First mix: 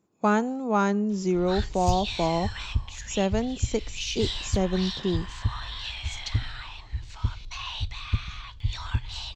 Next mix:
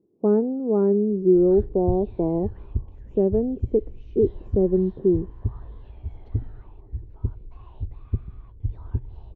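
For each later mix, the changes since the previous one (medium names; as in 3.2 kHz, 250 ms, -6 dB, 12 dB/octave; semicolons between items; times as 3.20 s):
master: add resonant low-pass 400 Hz, resonance Q 3.4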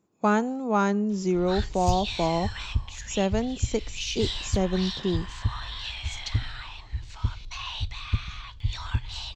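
master: remove resonant low-pass 400 Hz, resonance Q 3.4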